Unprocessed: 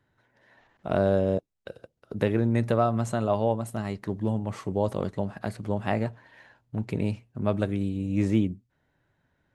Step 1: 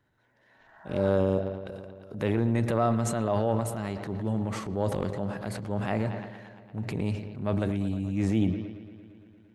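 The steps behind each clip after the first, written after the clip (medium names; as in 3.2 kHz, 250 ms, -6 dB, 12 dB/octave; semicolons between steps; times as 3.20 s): bucket-brigade echo 115 ms, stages 4096, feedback 77%, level -18 dB; transient shaper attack -5 dB, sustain +8 dB; spectral replace 0.60–1.06 s, 610–2000 Hz both; trim -1.5 dB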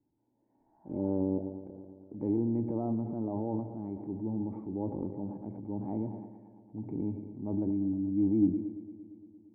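cascade formant filter u; trim +4.5 dB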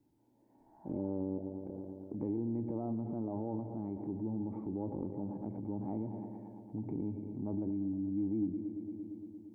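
compression 2.5:1, threshold -44 dBFS, peak gain reduction 15.5 dB; trim +5.5 dB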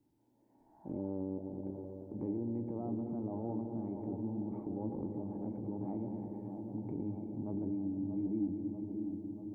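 feedback echo behind a low-pass 636 ms, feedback 68%, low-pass 920 Hz, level -6.5 dB; trim -2 dB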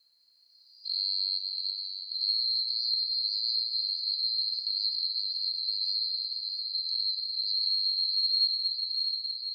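split-band scrambler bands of 4 kHz; trim +8 dB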